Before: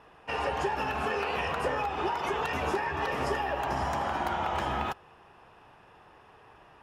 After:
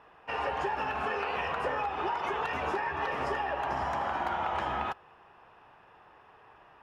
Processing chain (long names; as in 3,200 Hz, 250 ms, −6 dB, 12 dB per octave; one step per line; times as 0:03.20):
low-pass filter 1,100 Hz 6 dB per octave
tilt shelving filter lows −6.5 dB, about 680 Hz